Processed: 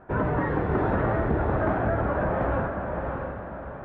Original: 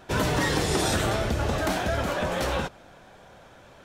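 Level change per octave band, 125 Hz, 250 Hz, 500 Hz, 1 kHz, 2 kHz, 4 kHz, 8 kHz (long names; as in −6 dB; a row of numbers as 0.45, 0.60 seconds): +2.0 dB, +2.0 dB, +2.0 dB, +1.5 dB, −2.5 dB, below −20 dB, below −40 dB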